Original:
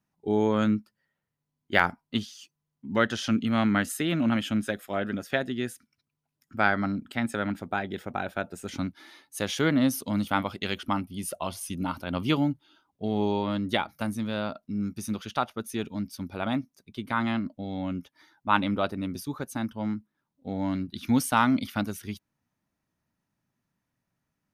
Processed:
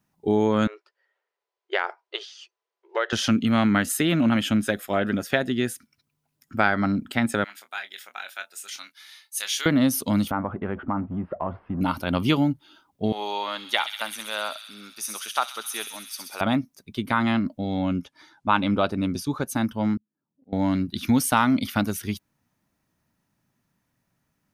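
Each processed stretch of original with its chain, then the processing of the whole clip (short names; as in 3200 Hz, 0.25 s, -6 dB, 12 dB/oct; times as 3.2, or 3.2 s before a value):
0.67–3.13 compressor, threshold -23 dBFS + brick-wall FIR high-pass 350 Hz + air absorption 150 m
7.44–9.66 Bessel high-pass 2700 Hz + doubler 25 ms -9 dB
10.31–11.81 G.711 law mismatch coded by mu + inverse Chebyshev low-pass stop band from 6200 Hz, stop band 70 dB + compressor 2:1, threshold -33 dBFS
13.12–16.41 HPF 870 Hz + thin delay 65 ms, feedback 79%, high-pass 3400 Hz, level -5 dB
17.79–19.47 LPF 8600 Hz + notch 1900 Hz
19.97–20.53 block floating point 7-bit + band-pass 270 Hz, Q 0.79 + auto swell 0.587 s
whole clip: high shelf 9300 Hz +3.5 dB; compressor 2:1, threshold -26 dBFS; gain +7 dB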